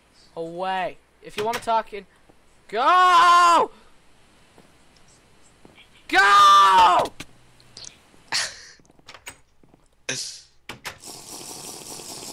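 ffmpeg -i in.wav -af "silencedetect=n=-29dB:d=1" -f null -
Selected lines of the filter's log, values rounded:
silence_start: 3.66
silence_end: 6.09 | silence_duration: 2.43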